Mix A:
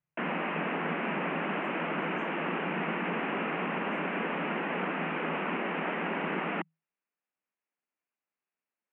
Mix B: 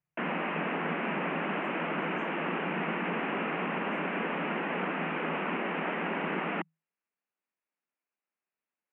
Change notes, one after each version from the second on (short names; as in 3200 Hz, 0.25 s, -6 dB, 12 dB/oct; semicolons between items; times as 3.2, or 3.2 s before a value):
none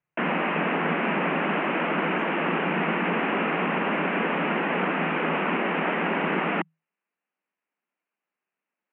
background +7.0 dB